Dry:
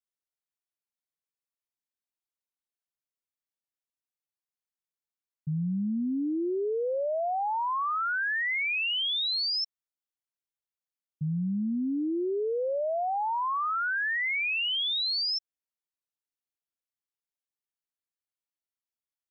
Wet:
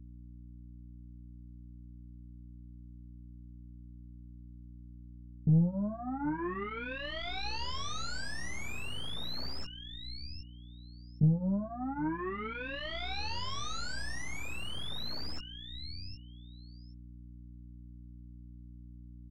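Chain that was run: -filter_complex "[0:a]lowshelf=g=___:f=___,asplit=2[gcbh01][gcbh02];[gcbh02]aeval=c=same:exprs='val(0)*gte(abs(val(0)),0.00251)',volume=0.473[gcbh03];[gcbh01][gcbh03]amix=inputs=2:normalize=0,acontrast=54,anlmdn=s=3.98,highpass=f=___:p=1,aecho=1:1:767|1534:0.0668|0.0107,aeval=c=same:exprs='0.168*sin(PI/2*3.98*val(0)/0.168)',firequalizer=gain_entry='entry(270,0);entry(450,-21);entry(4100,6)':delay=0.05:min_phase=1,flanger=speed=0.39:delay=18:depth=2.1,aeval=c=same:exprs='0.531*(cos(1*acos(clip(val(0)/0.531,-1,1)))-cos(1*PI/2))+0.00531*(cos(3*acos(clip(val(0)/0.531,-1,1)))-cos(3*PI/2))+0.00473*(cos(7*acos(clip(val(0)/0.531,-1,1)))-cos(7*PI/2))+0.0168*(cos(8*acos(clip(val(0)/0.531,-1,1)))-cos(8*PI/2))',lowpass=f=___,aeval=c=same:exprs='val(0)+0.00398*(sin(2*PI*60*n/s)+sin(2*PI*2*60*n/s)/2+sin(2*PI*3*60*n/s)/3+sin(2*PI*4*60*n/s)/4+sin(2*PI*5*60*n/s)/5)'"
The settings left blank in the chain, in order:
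-10.5, 140, 77, 1200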